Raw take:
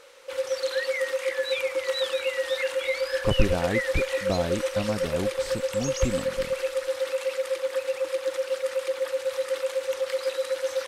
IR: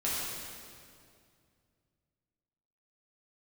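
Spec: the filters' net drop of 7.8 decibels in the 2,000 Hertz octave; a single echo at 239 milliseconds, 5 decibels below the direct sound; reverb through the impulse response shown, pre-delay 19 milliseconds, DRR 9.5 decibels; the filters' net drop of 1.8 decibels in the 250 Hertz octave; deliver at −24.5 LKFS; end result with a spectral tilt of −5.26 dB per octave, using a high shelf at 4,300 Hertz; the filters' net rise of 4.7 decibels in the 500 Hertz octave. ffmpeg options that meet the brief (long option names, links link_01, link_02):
-filter_complex "[0:a]equalizer=frequency=250:width_type=o:gain=-4,equalizer=frequency=500:width_type=o:gain=6,equalizer=frequency=2000:width_type=o:gain=-8.5,highshelf=frequency=4300:gain=-5,aecho=1:1:239:0.562,asplit=2[link_01][link_02];[1:a]atrim=start_sample=2205,adelay=19[link_03];[link_02][link_03]afir=irnorm=-1:irlink=0,volume=-17dB[link_04];[link_01][link_04]amix=inputs=2:normalize=0,volume=-2dB"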